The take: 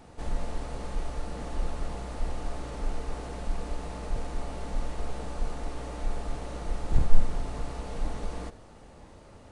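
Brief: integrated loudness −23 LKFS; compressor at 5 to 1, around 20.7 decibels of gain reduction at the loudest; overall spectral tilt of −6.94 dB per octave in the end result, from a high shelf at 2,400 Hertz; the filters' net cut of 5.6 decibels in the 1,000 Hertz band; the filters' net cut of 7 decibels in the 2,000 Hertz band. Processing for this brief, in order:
parametric band 1,000 Hz −6 dB
parametric band 2,000 Hz −5 dB
high-shelf EQ 2,400 Hz −4 dB
downward compressor 5 to 1, threshold −32 dBFS
level +20 dB

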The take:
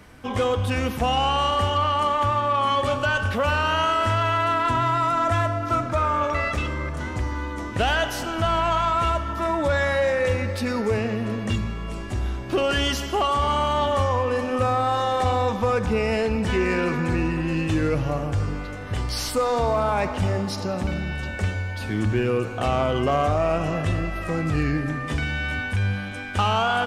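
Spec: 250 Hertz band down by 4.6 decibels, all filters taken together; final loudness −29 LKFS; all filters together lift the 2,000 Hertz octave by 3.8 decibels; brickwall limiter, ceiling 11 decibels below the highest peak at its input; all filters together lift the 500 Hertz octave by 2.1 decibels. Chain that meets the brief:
parametric band 250 Hz −8 dB
parametric band 500 Hz +4 dB
parametric band 2,000 Hz +5 dB
level −2 dB
brickwall limiter −20.5 dBFS

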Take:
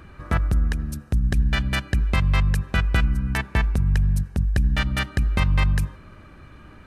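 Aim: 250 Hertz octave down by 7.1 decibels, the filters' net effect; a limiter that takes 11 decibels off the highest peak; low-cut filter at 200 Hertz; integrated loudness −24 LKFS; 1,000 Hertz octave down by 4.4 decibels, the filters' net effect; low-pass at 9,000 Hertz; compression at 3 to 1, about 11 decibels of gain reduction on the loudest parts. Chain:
high-pass filter 200 Hz
low-pass filter 9,000 Hz
parametric band 250 Hz −5.5 dB
parametric band 1,000 Hz −5.5 dB
downward compressor 3 to 1, threshold −39 dBFS
level +20 dB
brickwall limiter −9.5 dBFS

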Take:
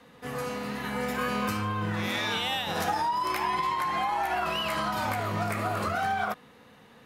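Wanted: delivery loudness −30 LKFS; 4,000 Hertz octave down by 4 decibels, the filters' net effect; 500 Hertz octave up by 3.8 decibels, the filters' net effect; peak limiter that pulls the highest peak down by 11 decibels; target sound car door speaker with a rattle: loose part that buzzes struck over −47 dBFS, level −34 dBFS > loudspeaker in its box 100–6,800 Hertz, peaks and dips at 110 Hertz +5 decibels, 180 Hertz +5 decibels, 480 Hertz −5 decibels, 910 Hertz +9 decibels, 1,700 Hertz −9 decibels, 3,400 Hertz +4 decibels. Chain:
parametric band 500 Hz +7 dB
parametric band 4,000 Hz −8.5 dB
brickwall limiter −25 dBFS
loose part that buzzes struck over −47 dBFS, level −34 dBFS
loudspeaker in its box 100–6,800 Hz, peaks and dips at 110 Hz +5 dB, 180 Hz +5 dB, 480 Hz −5 dB, 910 Hz +9 dB, 1,700 Hz −9 dB, 3,400 Hz +4 dB
level +0.5 dB

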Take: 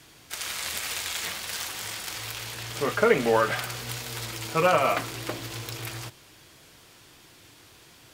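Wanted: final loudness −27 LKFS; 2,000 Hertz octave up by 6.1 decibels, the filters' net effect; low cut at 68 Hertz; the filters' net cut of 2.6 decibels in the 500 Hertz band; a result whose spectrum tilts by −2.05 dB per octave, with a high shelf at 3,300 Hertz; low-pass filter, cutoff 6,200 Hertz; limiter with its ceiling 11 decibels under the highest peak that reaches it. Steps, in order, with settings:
high-pass filter 68 Hz
low-pass filter 6,200 Hz
parametric band 500 Hz −3.5 dB
parametric band 2,000 Hz +6 dB
high-shelf EQ 3,300 Hz +6.5 dB
level +1.5 dB
brickwall limiter −14.5 dBFS

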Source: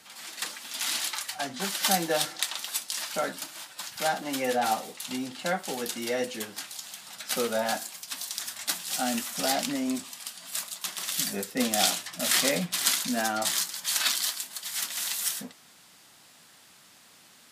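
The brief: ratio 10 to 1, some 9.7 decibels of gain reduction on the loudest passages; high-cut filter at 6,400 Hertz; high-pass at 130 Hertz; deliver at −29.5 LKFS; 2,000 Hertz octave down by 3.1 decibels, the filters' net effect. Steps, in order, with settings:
high-pass filter 130 Hz
low-pass filter 6,400 Hz
parametric band 2,000 Hz −4 dB
downward compressor 10 to 1, threshold −32 dBFS
level +7 dB

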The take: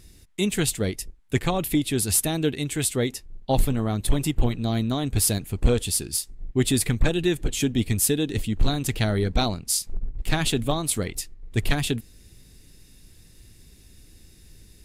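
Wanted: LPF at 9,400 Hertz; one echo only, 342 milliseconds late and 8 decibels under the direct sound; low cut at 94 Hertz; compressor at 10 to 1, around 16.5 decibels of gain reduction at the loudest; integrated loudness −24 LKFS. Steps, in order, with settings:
high-pass filter 94 Hz
low-pass filter 9,400 Hz
downward compressor 10 to 1, threshold −35 dBFS
single-tap delay 342 ms −8 dB
level +15 dB

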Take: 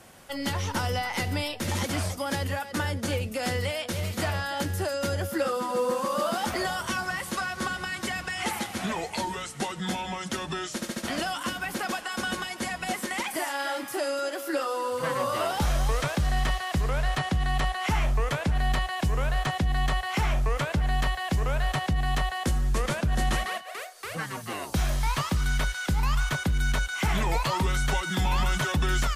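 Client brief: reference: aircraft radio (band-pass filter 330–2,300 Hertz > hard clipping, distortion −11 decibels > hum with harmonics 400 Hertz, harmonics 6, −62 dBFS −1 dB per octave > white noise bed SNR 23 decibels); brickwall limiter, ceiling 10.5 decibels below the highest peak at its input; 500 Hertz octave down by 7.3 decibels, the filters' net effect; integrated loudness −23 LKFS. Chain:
parametric band 500 Hz −8 dB
brickwall limiter −26.5 dBFS
band-pass filter 330–2,300 Hz
hard clipping −37 dBFS
hum with harmonics 400 Hz, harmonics 6, −62 dBFS −1 dB per octave
white noise bed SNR 23 dB
level +18 dB

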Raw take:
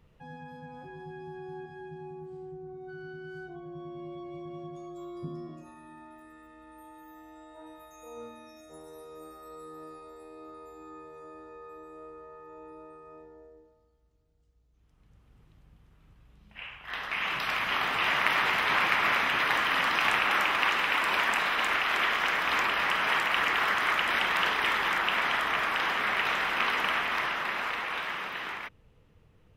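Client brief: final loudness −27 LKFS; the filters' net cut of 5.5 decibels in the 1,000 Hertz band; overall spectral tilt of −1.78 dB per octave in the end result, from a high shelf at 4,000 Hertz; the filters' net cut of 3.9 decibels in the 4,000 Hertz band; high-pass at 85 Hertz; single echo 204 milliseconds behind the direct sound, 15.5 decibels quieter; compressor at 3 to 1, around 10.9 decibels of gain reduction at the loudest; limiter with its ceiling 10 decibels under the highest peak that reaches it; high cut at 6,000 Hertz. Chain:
high-pass filter 85 Hz
low-pass filter 6,000 Hz
parametric band 1,000 Hz −7 dB
high-shelf EQ 4,000 Hz +4.5 dB
parametric band 4,000 Hz −7.5 dB
downward compressor 3 to 1, threshold −40 dBFS
brickwall limiter −32 dBFS
single-tap delay 204 ms −15.5 dB
level +15.5 dB

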